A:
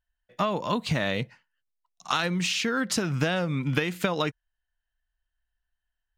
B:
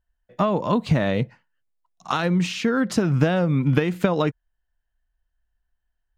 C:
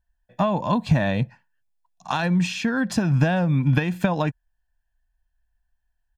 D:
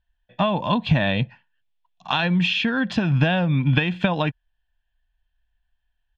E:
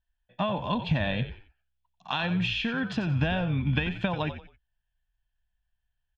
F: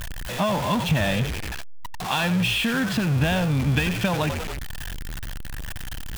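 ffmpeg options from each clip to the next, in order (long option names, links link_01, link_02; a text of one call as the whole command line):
ffmpeg -i in.wav -af "tiltshelf=frequency=1400:gain=6.5,volume=1.5dB" out.wav
ffmpeg -i in.wav -af "aecho=1:1:1.2:0.59,volume=-1.5dB" out.wav
ffmpeg -i in.wav -af "lowpass=frequency=3200:width_type=q:width=3.6" out.wav
ffmpeg -i in.wav -filter_complex "[0:a]asplit=4[link_01][link_02][link_03][link_04];[link_02]adelay=90,afreqshift=-64,volume=-10.5dB[link_05];[link_03]adelay=180,afreqshift=-128,volume=-20.4dB[link_06];[link_04]adelay=270,afreqshift=-192,volume=-30.3dB[link_07];[link_01][link_05][link_06][link_07]amix=inputs=4:normalize=0,volume=-7.5dB" out.wav
ffmpeg -i in.wav -af "aeval=exprs='val(0)+0.5*0.0473*sgn(val(0))':channel_layout=same,volume=2dB" out.wav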